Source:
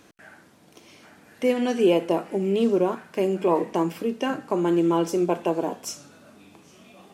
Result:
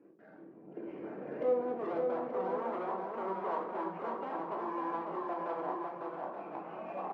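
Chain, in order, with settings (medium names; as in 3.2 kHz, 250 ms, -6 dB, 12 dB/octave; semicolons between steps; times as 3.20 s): CVSD coder 16 kbps; recorder AGC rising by 11 dB/s; high-pass 130 Hz 6 dB/octave; hum notches 60/120/180/240/300/360/420 Hz; spectral gate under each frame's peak -15 dB strong; bass shelf 450 Hz +6.5 dB; waveshaping leveller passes 1; in parallel at 0 dB: compression, threshold -28 dBFS, peak gain reduction 15.5 dB; on the sum: overload inside the chain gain 20 dB; band-pass sweep 370 Hz -> 860 Hz, 0.95–2.12 s; bouncing-ball echo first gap 550 ms, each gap 0.6×, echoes 5; on a send at -3 dB: reverberation RT60 0.40 s, pre-delay 14 ms; on the sum: trim -8.5 dB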